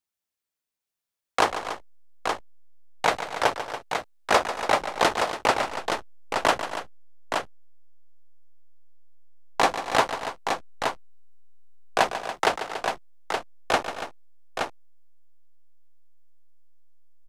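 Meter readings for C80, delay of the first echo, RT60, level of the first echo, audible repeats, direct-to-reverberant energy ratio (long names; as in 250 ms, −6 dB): no reverb audible, 143 ms, no reverb audible, −11.0 dB, 4, no reverb audible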